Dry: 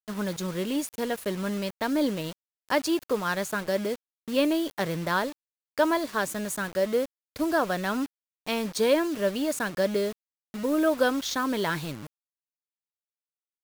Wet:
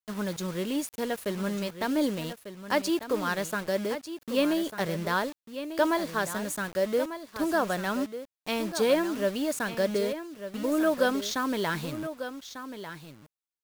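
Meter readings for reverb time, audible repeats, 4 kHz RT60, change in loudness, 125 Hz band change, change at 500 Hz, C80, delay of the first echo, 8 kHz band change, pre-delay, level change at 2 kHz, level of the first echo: none, 1, none, -1.5 dB, -1.0 dB, -1.0 dB, none, 1.196 s, -1.0 dB, none, -1.0 dB, -11.0 dB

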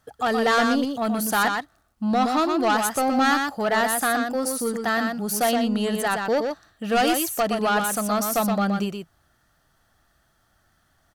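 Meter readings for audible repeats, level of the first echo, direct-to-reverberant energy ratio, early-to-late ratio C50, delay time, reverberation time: 1, -5.0 dB, none, none, 0.121 s, none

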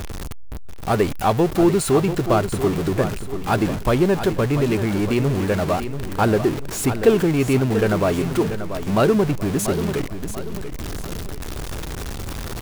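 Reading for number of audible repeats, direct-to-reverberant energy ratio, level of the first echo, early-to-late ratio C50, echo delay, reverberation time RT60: 4, none, -10.0 dB, none, 0.687 s, none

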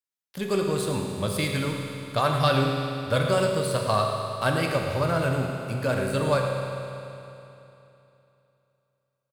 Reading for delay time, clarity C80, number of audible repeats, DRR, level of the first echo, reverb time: 0.108 s, 2.5 dB, 1, 0.5 dB, -11.0 dB, 3.0 s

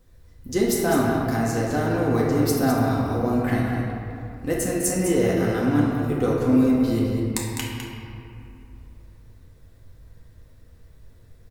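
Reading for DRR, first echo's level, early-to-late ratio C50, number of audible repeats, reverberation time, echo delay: -5.5 dB, -7.0 dB, -1.5 dB, 1, 2.8 s, 0.205 s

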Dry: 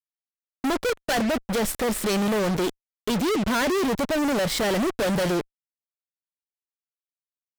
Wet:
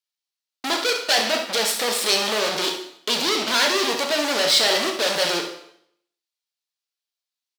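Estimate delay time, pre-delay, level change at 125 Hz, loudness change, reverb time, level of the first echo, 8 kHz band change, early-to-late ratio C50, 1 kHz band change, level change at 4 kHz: 66 ms, 6 ms, -14.0 dB, +4.5 dB, 0.65 s, -10.0 dB, +7.5 dB, 5.5 dB, +3.0 dB, +12.5 dB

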